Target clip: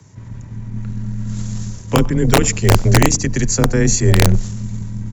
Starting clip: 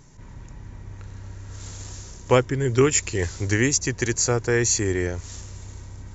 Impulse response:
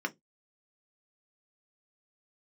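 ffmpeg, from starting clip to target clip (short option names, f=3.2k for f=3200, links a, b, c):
-filter_complex "[0:a]highpass=70,equalizer=f=89:w=2.3:g=15,bandreject=f=142.7:t=h:w=4,bandreject=f=285.4:t=h:w=4,bandreject=f=428.1:t=h:w=4,bandreject=f=570.8:t=h:w=4,bandreject=f=713.5:t=h:w=4,bandreject=f=856.2:t=h:w=4,bandreject=f=998.9:t=h:w=4,bandreject=f=1.1416k:t=h:w=4,acrossover=split=210|380|3100[a][b][c][d];[a]aeval=exprs='0.376*(cos(1*acos(clip(val(0)/0.376,-1,1)))-cos(1*PI/2))+0.0422*(cos(4*acos(clip(val(0)/0.376,-1,1)))-cos(4*PI/2))+0.00422*(cos(7*acos(clip(val(0)/0.376,-1,1)))-cos(7*PI/2))+0.0841*(cos(8*acos(clip(val(0)/0.376,-1,1)))-cos(8*PI/2))':c=same[e];[c]alimiter=limit=-19dB:level=0:latency=1:release=114[f];[e][b][f][d]amix=inputs=4:normalize=0,afreqshift=15,aeval=exprs='(mod(1.88*val(0)+1,2)-1)/1.88':c=same,atempo=1.2,asplit=2[g][h];[h]adelay=95,lowpass=f=1.6k:p=1,volume=-21.5dB,asplit=2[i][j];[j]adelay=95,lowpass=f=1.6k:p=1,volume=0.4,asplit=2[k][l];[l]adelay=95,lowpass=f=1.6k:p=1,volume=0.4[m];[g][i][k][m]amix=inputs=4:normalize=0,volume=3.5dB"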